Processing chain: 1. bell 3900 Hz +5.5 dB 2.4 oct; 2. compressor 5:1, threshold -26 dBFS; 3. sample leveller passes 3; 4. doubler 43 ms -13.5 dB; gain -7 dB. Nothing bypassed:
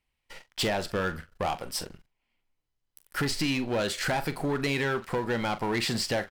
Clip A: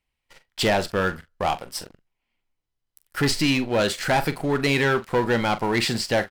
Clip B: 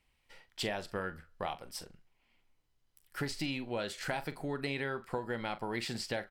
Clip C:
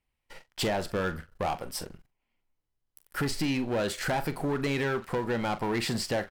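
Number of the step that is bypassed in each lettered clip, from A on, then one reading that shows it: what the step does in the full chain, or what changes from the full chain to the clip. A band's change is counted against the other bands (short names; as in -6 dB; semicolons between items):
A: 2, mean gain reduction 4.0 dB; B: 3, crest factor change +8.0 dB; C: 1, 4 kHz band -3.5 dB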